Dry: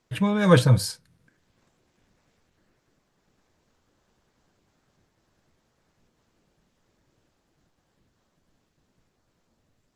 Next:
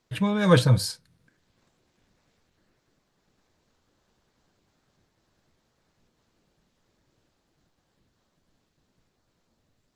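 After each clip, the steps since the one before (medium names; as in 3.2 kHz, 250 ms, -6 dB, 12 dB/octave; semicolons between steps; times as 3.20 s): peaking EQ 4.1 kHz +3.5 dB 0.62 oct; trim -1.5 dB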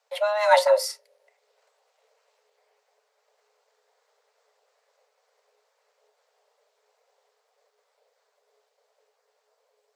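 frequency shift +420 Hz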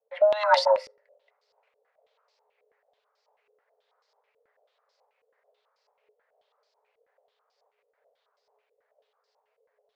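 step-sequenced low-pass 9.2 Hz 460–4900 Hz; trim -6.5 dB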